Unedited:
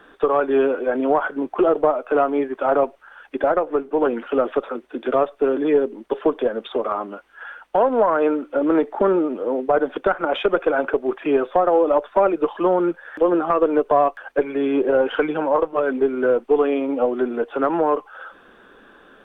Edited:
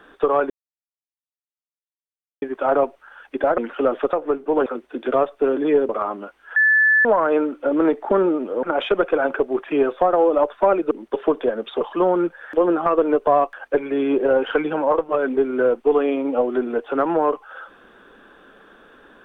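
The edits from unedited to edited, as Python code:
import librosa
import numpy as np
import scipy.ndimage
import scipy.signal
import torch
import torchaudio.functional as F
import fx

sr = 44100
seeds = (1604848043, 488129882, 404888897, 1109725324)

y = fx.edit(x, sr, fx.silence(start_s=0.5, length_s=1.92),
    fx.move(start_s=3.58, length_s=0.53, to_s=4.66),
    fx.move(start_s=5.89, length_s=0.9, to_s=12.45),
    fx.bleep(start_s=7.46, length_s=0.49, hz=1740.0, db=-12.0),
    fx.cut(start_s=9.53, length_s=0.64), tone=tone)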